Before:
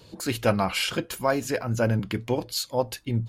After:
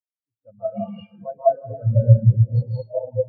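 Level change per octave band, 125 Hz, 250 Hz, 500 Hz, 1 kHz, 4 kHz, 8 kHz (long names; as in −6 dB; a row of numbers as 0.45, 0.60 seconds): +12.0 dB, −3.5 dB, +3.0 dB, +0.5 dB, below −20 dB, below −40 dB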